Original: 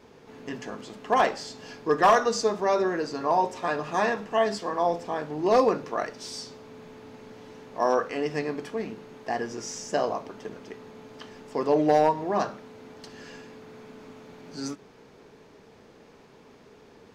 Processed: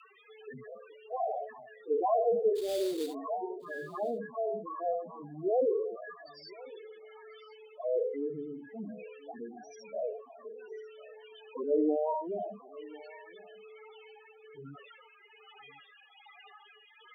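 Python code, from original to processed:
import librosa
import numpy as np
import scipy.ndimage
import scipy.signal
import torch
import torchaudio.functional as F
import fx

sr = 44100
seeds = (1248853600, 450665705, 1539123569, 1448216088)

p1 = fx.spec_trails(x, sr, decay_s=0.96)
p2 = scipy.signal.sosfilt(scipy.signal.butter(4, 5400.0, 'lowpass', fs=sr, output='sos'), p1)
p3 = 10.0 ** (-17.0 / 20.0) * np.tanh(p2 / 10.0 ** (-17.0 / 20.0))
p4 = p2 + (p3 * 10.0 ** (-7.0 / 20.0))
p5 = fx.dmg_noise_band(p4, sr, seeds[0], low_hz=540.0, high_hz=3600.0, level_db=-35.0)
p6 = fx.env_flanger(p5, sr, rest_ms=3.8, full_db=-16.0)
p7 = fx.spec_topn(p6, sr, count=4)
p8 = fx.sample_hold(p7, sr, seeds[1], rate_hz=4100.0, jitter_pct=20, at=(2.55, 3.13), fade=0.02)
p9 = fx.rotary(p8, sr, hz=1.2)
p10 = p9 + fx.echo_single(p9, sr, ms=1046, db=-20.5, dry=0)
y = p10 * 10.0 ** (-5.0 / 20.0)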